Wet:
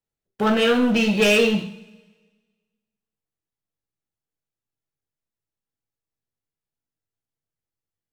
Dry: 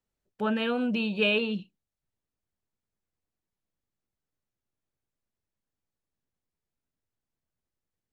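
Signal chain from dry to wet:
leveller curve on the samples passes 3
coupled-rooms reverb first 0.45 s, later 1.5 s, from −20 dB, DRR 2 dB

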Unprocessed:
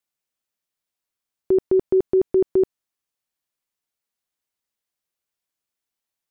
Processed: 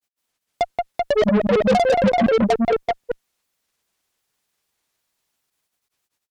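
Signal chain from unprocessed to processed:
granular cloud 100 ms, grains 20 per second, spray 982 ms, pitch spread up and down by 12 semitones
on a send: multi-tap delay 178/385 ms −6.5/−4.5 dB
on the sum: soft clipping −17.5 dBFS, distortion −13 dB
harmonic generator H 5 −16 dB, 8 −26 dB, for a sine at −17.5 dBFS
level +6.5 dB

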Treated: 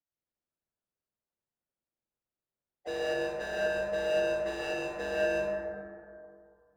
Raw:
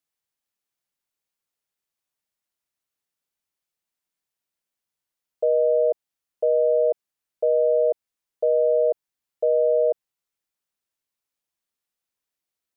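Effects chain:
running median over 41 samples
dynamic equaliser 300 Hz, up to +3 dB, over −48 dBFS, Q 3.7
pitch-shifted copies added +3 semitones −17 dB
gain into a clipping stage and back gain 30.5 dB
time stretch by phase vocoder 0.53×
dense smooth reverb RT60 2.4 s, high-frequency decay 0.3×, pre-delay 115 ms, DRR −4 dB

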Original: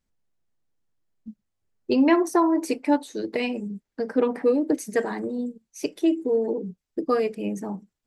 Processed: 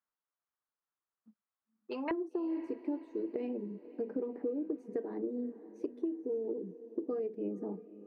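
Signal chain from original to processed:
resonant band-pass 1,200 Hz, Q 2.6, from 0:02.11 360 Hz
downward compressor 16 to 1, threshold −32 dBFS, peak gain reduction 17 dB
feedback delay with all-pass diffusion 537 ms, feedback 48%, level −15.5 dB

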